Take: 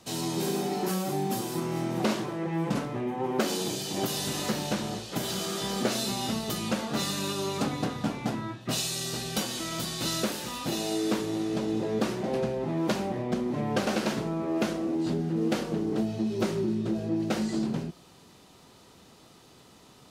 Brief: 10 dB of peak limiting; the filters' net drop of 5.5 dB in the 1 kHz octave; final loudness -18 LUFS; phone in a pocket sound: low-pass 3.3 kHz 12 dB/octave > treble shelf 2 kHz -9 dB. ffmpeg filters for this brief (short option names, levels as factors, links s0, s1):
-af "equalizer=f=1000:t=o:g=-5.5,alimiter=limit=0.0631:level=0:latency=1,lowpass=3300,highshelf=f=2000:g=-9,volume=6.68"